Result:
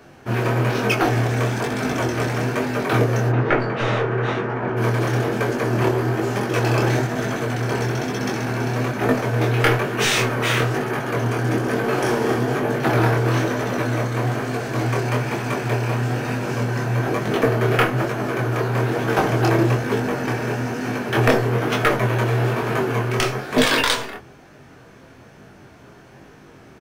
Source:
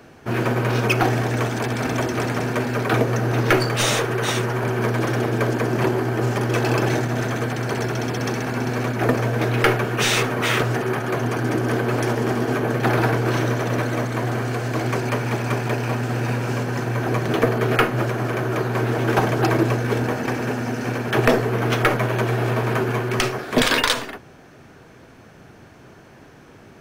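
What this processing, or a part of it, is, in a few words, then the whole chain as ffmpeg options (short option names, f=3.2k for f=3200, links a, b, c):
double-tracked vocal: -filter_complex "[0:a]asplit=3[a][b][c];[a]afade=t=out:st=3.28:d=0.02[d];[b]lowpass=2k,afade=t=in:st=3.28:d=0.02,afade=t=out:st=4.76:d=0.02[e];[c]afade=t=in:st=4.76:d=0.02[f];[d][e][f]amix=inputs=3:normalize=0,asplit=3[g][h][i];[g]afade=t=out:st=11.83:d=0.02[j];[h]asplit=2[k][l];[l]adelay=38,volume=-2dB[m];[k][m]amix=inputs=2:normalize=0,afade=t=in:st=11.83:d=0.02,afade=t=out:st=12.34:d=0.02[n];[i]afade=t=in:st=12.34:d=0.02[o];[j][n][o]amix=inputs=3:normalize=0,asplit=2[p][q];[q]adelay=15,volume=-10.5dB[r];[p][r]amix=inputs=2:normalize=0,flanger=delay=19.5:depth=7.2:speed=1.1,volume=3dB"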